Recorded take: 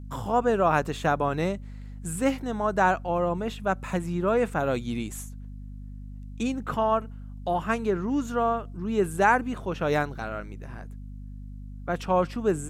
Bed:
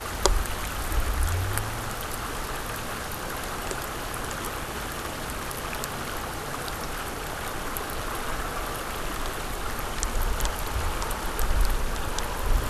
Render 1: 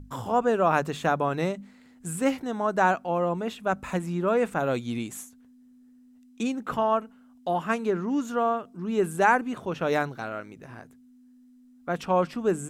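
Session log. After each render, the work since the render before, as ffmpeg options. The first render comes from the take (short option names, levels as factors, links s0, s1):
-af "bandreject=f=50:t=h:w=6,bandreject=f=100:t=h:w=6,bandreject=f=150:t=h:w=6,bandreject=f=200:t=h:w=6"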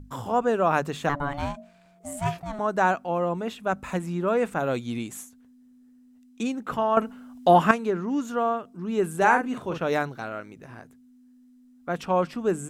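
-filter_complex "[0:a]asettb=1/sr,asplit=3[s0][s1][s2];[s0]atrim=end=1.094[s3];[s1]atrim=start=1.09:end=2.59,asetpts=PTS-STARTPTS,afade=t=in:d=0.004:c=qsin,afade=t=out:st=1.496:d=0.004:c=qsin,aeval=exprs='val(0)*sin(2*PI*430*n/s)':c=same[s4];[s2]atrim=start=2.586[s5];[s3][s4]acrossfade=d=0.004:c1=hsin:c2=qsin[s6];[s6][s5]acrossfade=d=0.004:c1=qsin:c2=hsin,asettb=1/sr,asplit=3[s7][s8][s9];[s7]atrim=end=9.174[s10];[s8]atrim=start=9.17:end=9.78,asetpts=PTS-STARTPTS,afade=t=in:d=0.004:c=qsin,afade=t=out:st=0.606:d=0.004:c=qsin,asplit=2[s11][s12];[s12]adelay=43,volume=0.501[s13];[s11][s13]amix=inputs=2:normalize=0,atrim=end_sample=26901[s14];[s9]atrim=start=9.776[s15];[s10][s14]acrossfade=d=0.004:c1=hsin:c2=qsin[s16];[s16][s15]acrossfade=d=0.004:c1=qsin:c2=hsin,asplit=3[s17][s18][s19];[s17]atrim=end=6.972[s20];[s18]atrim=start=6.968:end=7.712,asetpts=PTS-STARTPTS,volume=3.35[s21];[s19]atrim=start=7.708[s22];[s20][s21]acrossfade=d=0.004:c1=hsin:c2=hsin[s23];[s23][s22]acrossfade=d=0.004:c1=hsin:c2=hsin"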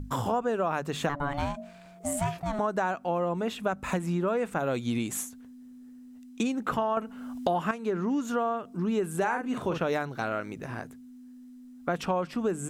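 -filter_complex "[0:a]asplit=2[s0][s1];[s1]alimiter=limit=0.188:level=0:latency=1:release=320,volume=1.19[s2];[s0][s2]amix=inputs=2:normalize=0,acompressor=threshold=0.0501:ratio=5"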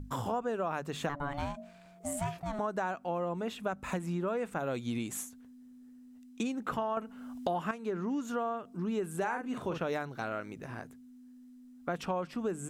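-af "volume=0.531"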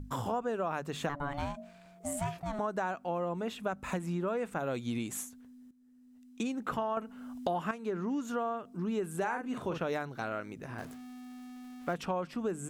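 -filter_complex "[0:a]asettb=1/sr,asplit=3[s0][s1][s2];[s0]atrim=end=10.784[s3];[s1]atrim=start=10.78:end=11.94,asetpts=PTS-STARTPTS,afade=t=in:d=0.004:c=qsin,afade=t=out:st=1.156:d=0.004:c=qsin,aeval=exprs='val(0)+0.5*0.00531*sgn(val(0))':c=same[s4];[s2]atrim=start=11.936[s5];[s3][s4]acrossfade=d=0.004:c1=hsin:c2=qsin[s6];[s6][s5]acrossfade=d=0.004:c1=qsin:c2=hsin,asplit=2[s7][s8];[s7]atrim=end=5.71,asetpts=PTS-STARTPTS,afade=t=out:st=5.706:d=0.004:c=hsin:silence=0.199526[s9];[s8]atrim=start=5.71,asetpts=PTS-STARTPTS,afade=t=in:d=0.8:silence=0.199526[s10];[s9][s10]concat=n=2:v=0:a=1"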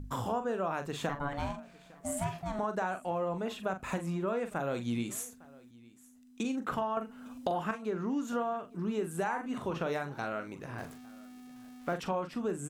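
-filter_complex "[0:a]asplit=2[s0][s1];[s1]adelay=42,volume=0.355[s2];[s0][s2]amix=inputs=2:normalize=0,aecho=1:1:856:0.0708"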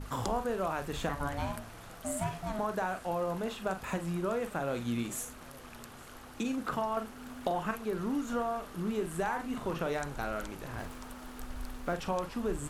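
-filter_complex "[1:a]volume=0.126[s0];[0:a][s0]amix=inputs=2:normalize=0"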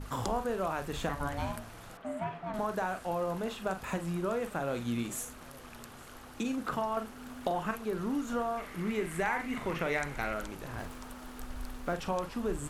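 -filter_complex "[0:a]asettb=1/sr,asplit=3[s0][s1][s2];[s0]atrim=end=1.974[s3];[s1]atrim=start=1.97:end=2.54,asetpts=PTS-STARTPTS,afade=t=in:d=0.004:c=qsin,afade=t=out:st=0.566:d=0.004:c=qsin,acrossover=split=160 3100:gain=0.178 1 0.0631[s4][s5][s6];[s4][s5][s6]amix=inputs=3:normalize=0[s7];[s2]atrim=start=2.536[s8];[s3][s7]acrossfade=d=0.004:c1=hsin:c2=qsin[s9];[s9][s8]acrossfade=d=0.004:c1=qsin:c2=hsin,asettb=1/sr,asplit=3[s10][s11][s12];[s10]atrim=end=8.574[s13];[s11]atrim=start=8.57:end=10.34,asetpts=PTS-STARTPTS,afade=t=in:d=0.004:c=qsin,afade=t=out:st=1.766:d=0.004:c=qsin,equalizer=f=2100:w=3.3:g=14.5[s14];[s12]atrim=start=10.336[s15];[s13][s14]acrossfade=d=0.004:c1=hsin:c2=qsin[s16];[s16][s15]acrossfade=d=0.004:c1=qsin:c2=hsin"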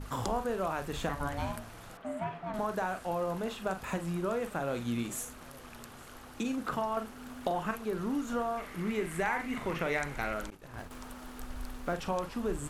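-filter_complex "[0:a]asettb=1/sr,asplit=3[s0][s1][s2];[s0]atrim=end=10.504[s3];[s1]atrim=start=10.5:end=10.91,asetpts=PTS-STARTPTS,afade=t=in:d=0.004:c=qsin,afade=t=out:st=0.406:d=0.004:c=qsin,agate=range=0.0224:threshold=0.0158:ratio=3:release=100:detection=peak[s4];[s2]atrim=start=10.906[s5];[s3][s4]acrossfade=d=0.004:c1=hsin:c2=qsin[s6];[s6][s5]acrossfade=d=0.004:c1=qsin:c2=hsin"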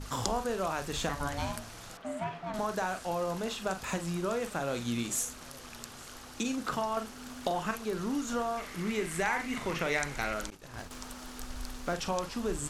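-af "equalizer=f=5700:w=0.74:g=10"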